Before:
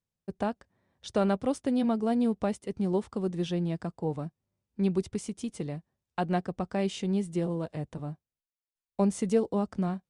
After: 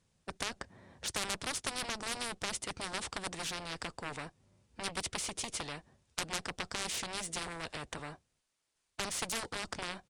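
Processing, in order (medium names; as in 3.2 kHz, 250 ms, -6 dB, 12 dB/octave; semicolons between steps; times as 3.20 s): resampled via 22.05 kHz; Chebyshev shaper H 3 -18 dB, 7 -12 dB, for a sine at -14 dBFS; spectrum-flattening compressor 4:1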